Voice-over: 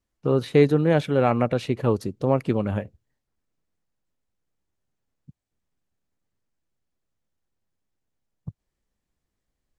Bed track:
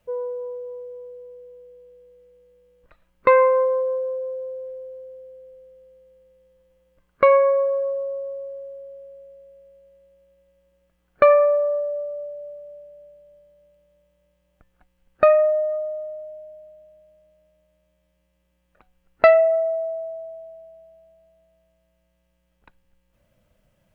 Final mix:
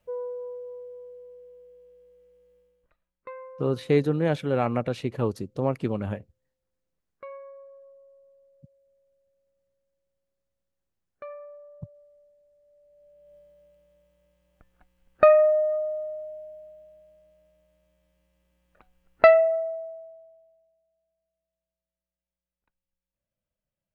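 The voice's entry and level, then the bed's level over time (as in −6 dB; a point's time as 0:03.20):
3.35 s, −4.5 dB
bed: 0:02.58 −5 dB
0:03.33 −27 dB
0:12.49 −27 dB
0:13.35 −1 dB
0:19.23 −1 dB
0:20.82 −25 dB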